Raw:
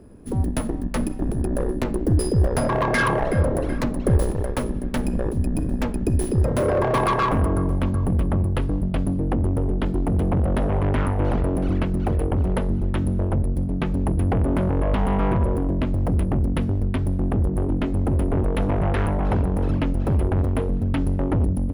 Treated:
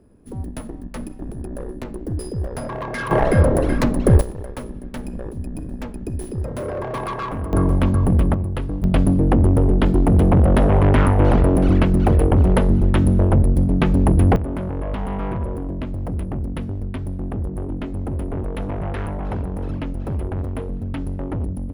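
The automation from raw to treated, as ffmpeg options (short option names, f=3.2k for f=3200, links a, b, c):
-af "asetnsamples=n=441:p=0,asendcmd='3.11 volume volume 5.5dB;4.21 volume volume -6.5dB;7.53 volume volume 5dB;8.34 volume volume -2dB;8.84 volume volume 7dB;14.36 volume volume -4.5dB',volume=-7dB"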